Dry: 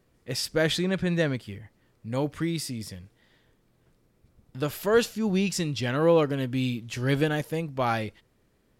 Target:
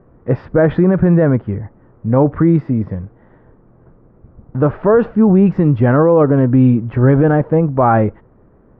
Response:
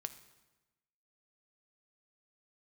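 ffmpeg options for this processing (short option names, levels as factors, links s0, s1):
-af "lowpass=f=1300:w=0.5412,lowpass=f=1300:w=1.3066,alimiter=level_in=11.2:limit=0.891:release=50:level=0:latency=1,volume=0.75"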